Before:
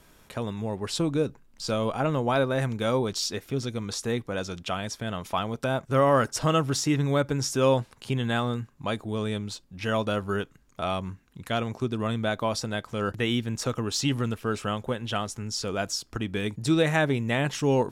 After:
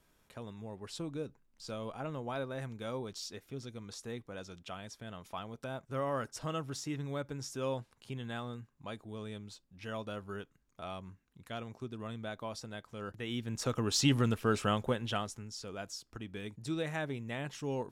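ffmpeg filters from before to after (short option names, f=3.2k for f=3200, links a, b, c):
-af "volume=-1.5dB,afade=t=in:st=13.25:d=0.79:silence=0.237137,afade=t=out:st=14.78:d=0.72:silence=0.251189"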